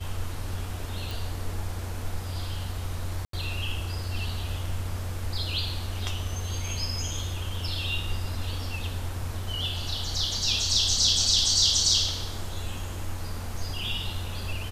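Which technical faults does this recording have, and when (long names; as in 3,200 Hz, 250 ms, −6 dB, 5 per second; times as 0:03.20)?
0:01.11: click
0:03.25–0:03.33: drop-out 83 ms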